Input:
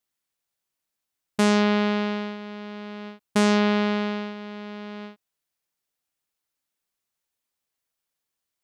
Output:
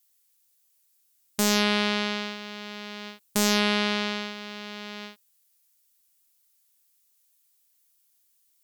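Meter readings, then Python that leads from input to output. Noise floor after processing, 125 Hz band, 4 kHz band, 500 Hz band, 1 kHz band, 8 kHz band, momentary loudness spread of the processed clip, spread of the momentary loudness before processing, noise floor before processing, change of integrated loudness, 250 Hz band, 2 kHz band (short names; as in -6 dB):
-68 dBFS, n/a, +6.0 dB, -5.0 dB, -2.5 dB, +8.0 dB, 17 LU, 17 LU, -84 dBFS, -3.0 dB, -5.5 dB, +1.5 dB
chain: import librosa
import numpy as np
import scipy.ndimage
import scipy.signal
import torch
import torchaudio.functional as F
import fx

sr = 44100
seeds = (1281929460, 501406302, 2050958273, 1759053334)

y = scipy.signal.lfilter([1.0, -0.9], [1.0], x)
y = fx.fold_sine(y, sr, drive_db=6, ceiling_db=-12.5)
y = F.gain(torch.from_numpy(y), 4.5).numpy()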